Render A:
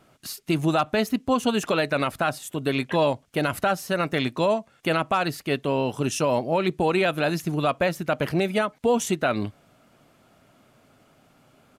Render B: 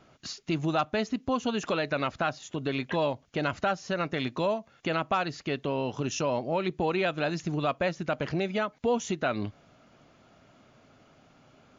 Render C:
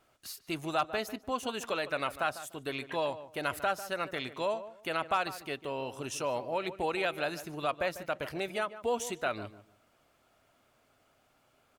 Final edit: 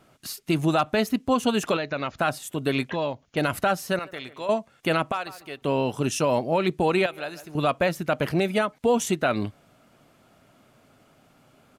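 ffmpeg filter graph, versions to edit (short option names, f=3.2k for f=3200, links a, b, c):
-filter_complex "[1:a]asplit=2[a][b];[2:a]asplit=3[c][d][e];[0:a]asplit=6[f][g][h][i][j][k];[f]atrim=end=1.772[l];[a]atrim=start=1.768:end=2.182[m];[g]atrim=start=2.178:end=2.902[n];[b]atrim=start=2.898:end=3.372[o];[h]atrim=start=3.368:end=3.992[p];[c]atrim=start=3.988:end=4.492[q];[i]atrim=start=4.488:end=5.122[r];[d]atrim=start=5.118:end=5.622[s];[j]atrim=start=5.618:end=7.062[t];[e]atrim=start=7.058:end=7.552[u];[k]atrim=start=7.548[v];[l][m]acrossfade=d=0.004:c1=hsin:c2=hsin[w];[w][n]acrossfade=d=0.004:c1=hsin:c2=hsin[x];[x][o]acrossfade=d=0.004:c1=hsin:c2=hsin[y];[y][p]acrossfade=d=0.004:c1=hsin:c2=hsin[z];[z][q]acrossfade=d=0.004:c1=hsin:c2=hsin[aa];[aa][r]acrossfade=d=0.004:c1=hsin:c2=hsin[ab];[ab][s]acrossfade=d=0.004:c1=hsin:c2=hsin[ac];[ac][t]acrossfade=d=0.004:c1=hsin:c2=hsin[ad];[ad][u]acrossfade=d=0.004:c1=hsin:c2=hsin[ae];[ae][v]acrossfade=d=0.004:c1=hsin:c2=hsin"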